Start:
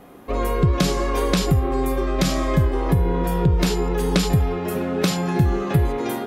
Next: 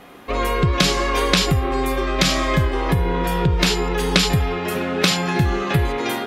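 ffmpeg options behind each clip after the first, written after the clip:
-af "equalizer=f=2900:t=o:w=2.9:g=11,volume=0.891"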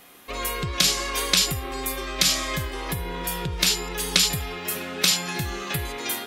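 -af "crystalizer=i=6:c=0,volume=0.251"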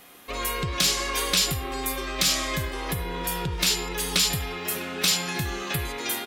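-filter_complex "[0:a]asoftclip=type=tanh:threshold=0.211,asplit=2[s0][s1];[s1]adelay=100,highpass=300,lowpass=3400,asoftclip=type=hard:threshold=0.0668,volume=0.282[s2];[s0][s2]amix=inputs=2:normalize=0"

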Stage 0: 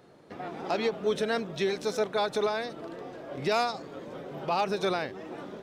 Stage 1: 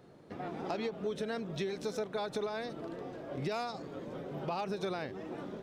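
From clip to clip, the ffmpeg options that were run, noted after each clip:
-af "lowshelf=f=340:g=7,acompressor=threshold=0.0398:ratio=6,volume=0.596"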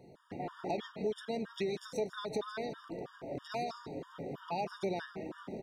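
-af "aecho=1:1:158:0.237,afftfilt=real='re*gt(sin(2*PI*3.1*pts/sr)*(1-2*mod(floor(b*sr/1024/940),2)),0)':imag='im*gt(sin(2*PI*3.1*pts/sr)*(1-2*mod(floor(b*sr/1024/940),2)),0)':win_size=1024:overlap=0.75,volume=1.19"

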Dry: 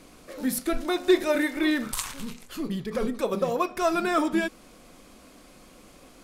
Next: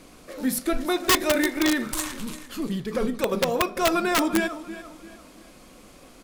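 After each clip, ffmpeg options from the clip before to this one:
-af "aecho=1:1:344|688|1032:0.188|0.0659|0.0231,aeval=exprs='(mod(5.62*val(0)+1,2)-1)/5.62':c=same,volume=1.26"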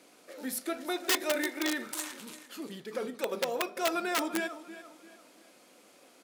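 -af "highpass=340,bandreject=f=1100:w=10,volume=0.447"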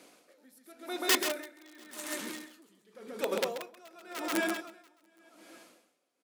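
-filter_complex "[0:a]asplit=2[s0][s1];[s1]aecho=0:1:134|689|819:0.596|0.251|0.158[s2];[s0][s2]amix=inputs=2:normalize=0,aeval=exprs='val(0)*pow(10,-27*(0.5-0.5*cos(2*PI*0.9*n/s))/20)':c=same,volume=1.26"

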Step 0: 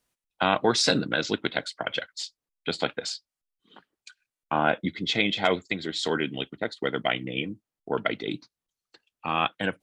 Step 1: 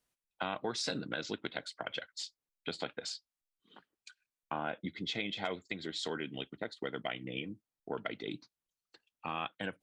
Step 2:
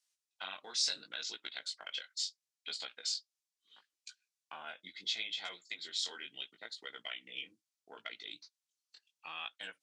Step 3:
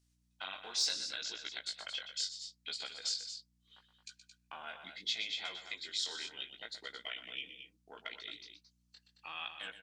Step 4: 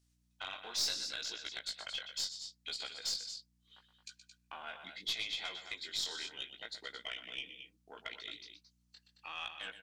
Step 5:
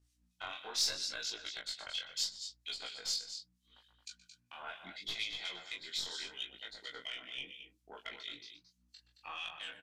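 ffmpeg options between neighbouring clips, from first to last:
-af "acompressor=threshold=0.0316:ratio=2.5,volume=0.501"
-af "bandpass=f=5800:t=q:w=1.1:csg=0,flanger=delay=16.5:depth=5.7:speed=0.73,volume=2.99"
-af "aeval=exprs='val(0)+0.0002*(sin(2*PI*60*n/s)+sin(2*PI*2*60*n/s)/2+sin(2*PI*3*60*n/s)/3+sin(2*PI*4*60*n/s)/4+sin(2*PI*5*60*n/s)/5)':c=same,aecho=1:1:122.4|221.6:0.282|0.316,asoftclip=type=hard:threshold=0.075"
-af "aeval=exprs='(tanh(22.4*val(0)+0.25)-tanh(0.25))/22.4':c=same,volume=1.12"
-filter_complex "[0:a]acrossover=split=2100[s0][s1];[s0]aeval=exprs='val(0)*(1-0.7/2+0.7/2*cos(2*PI*4.3*n/s))':c=same[s2];[s1]aeval=exprs='val(0)*(1-0.7/2-0.7/2*cos(2*PI*4.3*n/s))':c=same[s3];[s2][s3]amix=inputs=2:normalize=0,flanger=delay=19:depth=5.7:speed=0.77,aresample=32000,aresample=44100,volume=2"

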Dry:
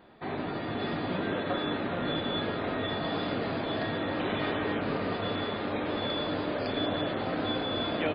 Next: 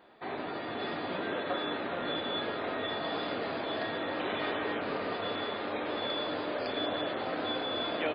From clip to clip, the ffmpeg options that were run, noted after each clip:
-af "bass=f=250:g=-12,treble=f=4000:g=0,volume=0.891"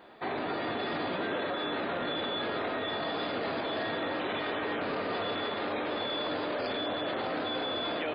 -af "alimiter=level_in=2.11:limit=0.0631:level=0:latency=1:release=15,volume=0.473,volume=1.88"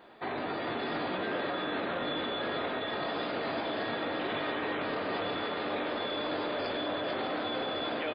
-filter_complex "[0:a]asplit=2[s0][s1];[s1]adelay=21,volume=0.266[s2];[s0][s2]amix=inputs=2:normalize=0,aecho=1:1:444:0.447,volume=0.841"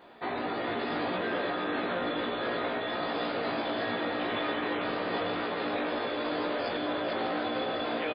-filter_complex "[0:a]asplit=2[s0][s1];[s1]adelay=17,volume=0.708[s2];[s0][s2]amix=inputs=2:normalize=0"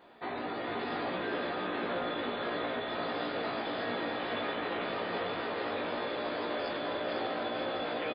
-af "aecho=1:1:502:0.562,volume=0.631"

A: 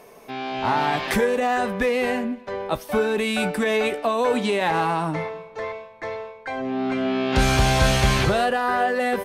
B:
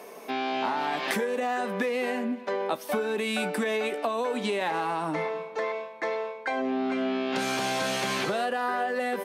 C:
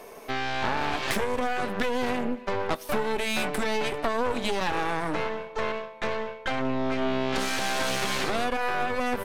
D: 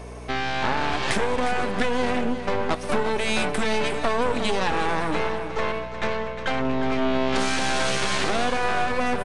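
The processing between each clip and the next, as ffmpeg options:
-af "highpass=f=200:w=0.5412,highpass=f=200:w=1.3066,acompressor=threshold=0.0398:ratio=10,volume=1.41"
-filter_complex "[0:a]asplit=2[s0][s1];[s1]volume=33.5,asoftclip=hard,volume=0.0299,volume=0.335[s2];[s0][s2]amix=inputs=2:normalize=0,aeval=exprs='0.282*(cos(1*acos(clip(val(0)/0.282,-1,1)))-cos(1*PI/2))+0.0794*(cos(6*acos(clip(val(0)/0.282,-1,1)))-cos(6*PI/2))':c=same,volume=0.708"
-filter_complex "[0:a]aeval=exprs='val(0)+0.00891*(sin(2*PI*60*n/s)+sin(2*PI*2*60*n/s)/2+sin(2*PI*3*60*n/s)/3+sin(2*PI*4*60*n/s)/4+sin(2*PI*5*60*n/s)/5)':c=same,asplit=2[s0][s1];[s1]aecho=0:1:356|678:0.299|0.188[s2];[s0][s2]amix=inputs=2:normalize=0,aresample=22050,aresample=44100,volume=1.41"

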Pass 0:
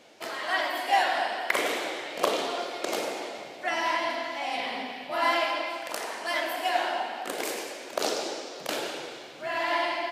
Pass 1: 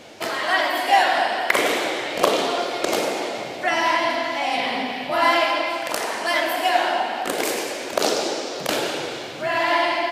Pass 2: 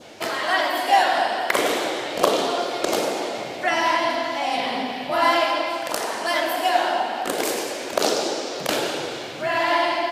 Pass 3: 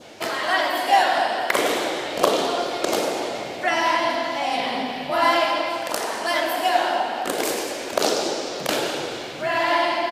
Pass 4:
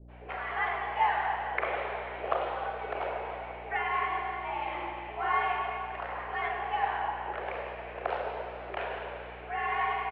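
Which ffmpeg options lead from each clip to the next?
-filter_complex "[0:a]equalizer=f=63:t=o:w=2.2:g=12,asplit=2[s0][s1];[s1]acompressor=threshold=0.0141:ratio=6,volume=0.891[s2];[s0][s2]amix=inputs=2:normalize=0,volume=1.88"
-af "adynamicequalizer=threshold=0.0158:dfrequency=2200:dqfactor=1.9:tfrequency=2200:tqfactor=1.9:attack=5:release=100:ratio=0.375:range=2.5:mode=cutabove:tftype=bell"
-filter_complex "[0:a]asplit=3[s0][s1][s2];[s1]adelay=211,afreqshift=-110,volume=0.0944[s3];[s2]adelay=422,afreqshift=-220,volume=0.0292[s4];[s0][s3][s4]amix=inputs=3:normalize=0"
-filter_complex "[0:a]highpass=f=270:t=q:w=0.5412,highpass=f=270:t=q:w=1.307,lowpass=f=2500:t=q:w=0.5176,lowpass=f=2500:t=q:w=0.7071,lowpass=f=2500:t=q:w=1.932,afreqshift=89,aeval=exprs='val(0)+0.01*(sin(2*PI*60*n/s)+sin(2*PI*2*60*n/s)/2+sin(2*PI*3*60*n/s)/3+sin(2*PI*4*60*n/s)/4+sin(2*PI*5*60*n/s)/5)':c=same,acrossover=split=460[s0][s1];[s1]adelay=80[s2];[s0][s2]amix=inputs=2:normalize=0,volume=0.355"

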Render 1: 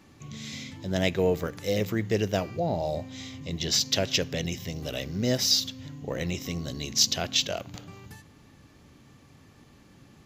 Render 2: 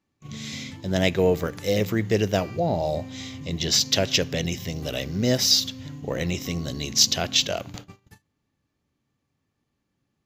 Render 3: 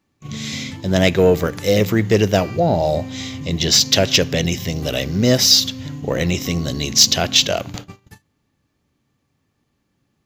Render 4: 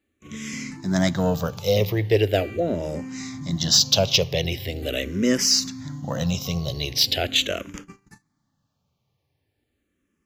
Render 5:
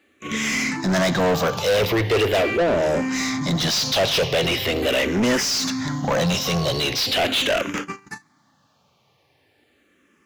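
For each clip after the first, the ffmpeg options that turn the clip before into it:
-af "agate=range=0.0501:threshold=0.00794:ratio=16:detection=peak,volume=1.58"
-af "acontrast=71,volume=1.12"
-filter_complex "[0:a]asplit=2[s0][s1];[s1]afreqshift=-0.41[s2];[s0][s2]amix=inputs=2:normalize=1,volume=0.75"
-filter_complex "[0:a]asplit=2[s0][s1];[s1]highpass=f=720:p=1,volume=44.7,asoftclip=type=tanh:threshold=0.596[s2];[s0][s2]amix=inputs=2:normalize=0,lowpass=f=3000:p=1,volume=0.501,volume=0.473"

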